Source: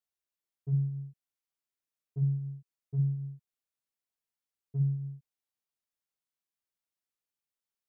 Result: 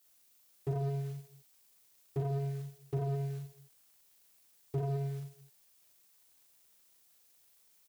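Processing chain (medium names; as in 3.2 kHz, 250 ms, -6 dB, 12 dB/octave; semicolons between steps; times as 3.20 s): tilt EQ +4 dB/octave; waveshaping leveller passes 3; in parallel at +1.5 dB: compression, threshold -49 dBFS, peak gain reduction 13.5 dB; on the sum: static phaser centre 500 Hz, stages 4; on a send: reverse bouncing-ball echo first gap 40 ms, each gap 1.2×, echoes 5; on the sum: slew-rate limiter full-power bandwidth 3.7 Hz; trim +9 dB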